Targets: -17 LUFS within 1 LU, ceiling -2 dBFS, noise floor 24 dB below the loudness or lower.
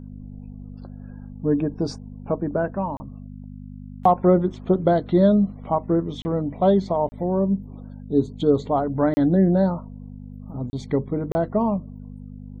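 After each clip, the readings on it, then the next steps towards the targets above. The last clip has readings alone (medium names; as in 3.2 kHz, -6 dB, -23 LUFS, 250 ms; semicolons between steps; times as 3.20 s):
dropouts 6; longest dropout 30 ms; hum 50 Hz; highest harmonic 250 Hz; hum level -37 dBFS; loudness -22.0 LUFS; peak level -5.0 dBFS; loudness target -17.0 LUFS
-> interpolate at 2.97/6.22/7.09/9.14/10.70/11.32 s, 30 ms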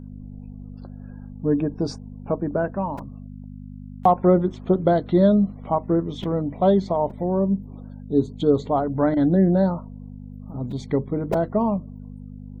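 dropouts 0; hum 50 Hz; highest harmonic 250 Hz; hum level -37 dBFS
-> de-hum 50 Hz, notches 5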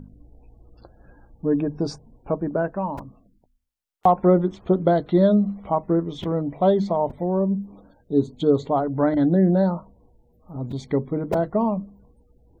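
hum not found; loudness -22.5 LUFS; peak level -5.5 dBFS; loudness target -17.0 LUFS
-> trim +5.5 dB; peak limiter -2 dBFS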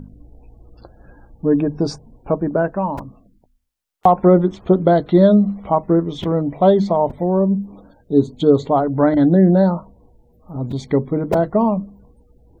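loudness -17.0 LUFS; peak level -2.0 dBFS; noise floor -58 dBFS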